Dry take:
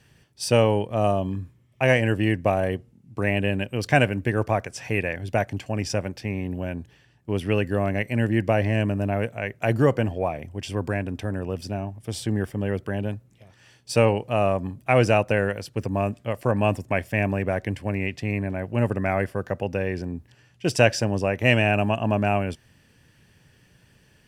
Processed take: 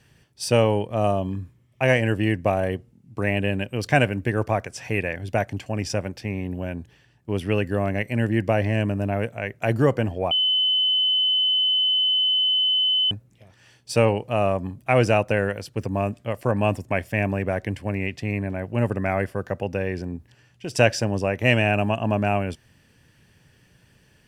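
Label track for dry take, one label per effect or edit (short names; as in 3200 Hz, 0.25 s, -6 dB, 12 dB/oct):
10.310000	13.110000	bleep 3030 Hz -17.5 dBFS
20.160000	20.760000	compressor 2:1, threshold -33 dBFS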